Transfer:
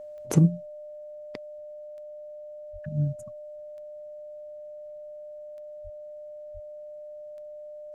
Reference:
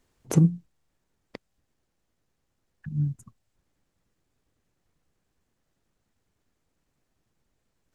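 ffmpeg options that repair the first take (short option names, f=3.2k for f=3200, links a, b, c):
-filter_complex "[0:a]adeclick=t=4,bandreject=f=600:w=30,asplit=3[a][b][c];[a]afade=t=out:st=2.72:d=0.02[d];[b]highpass=f=140:w=0.5412,highpass=f=140:w=1.3066,afade=t=in:st=2.72:d=0.02,afade=t=out:st=2.84:d=0.02[e];[c]afade=t=in:st=2.84:d=0.02[f];[d][e][f]amix=inputs=3:normalize=0,asplit=3[g][h][i];[g]afade=t=out:st=5.83:d=0.02[j];[h]highpass=f=140:w=0.5412,highpass=f=140:w=1.3066,afade=t=in:st=5.83:d=0.02,afade=t=out:st=5.95:d=0.02[k];[i]afade=t=in:st=5.95:d=0.02[l];[j][k][l]amix=inputs=3:normalize=0,asplit=3[m][n][o];[m]afade=t=out:st=6.53:d=0.02[p];[n]highpass=f=140:w=0.5412,highpass=f=140:w=1.3066,afade=t=in:st=6.53:d=0.02,afade=t=out:st=6.65:d=0.02[q];[o]afade=t=in:st=6.65:d=0.02[r];[p][q][r]amix=inputs=3:normalize=0"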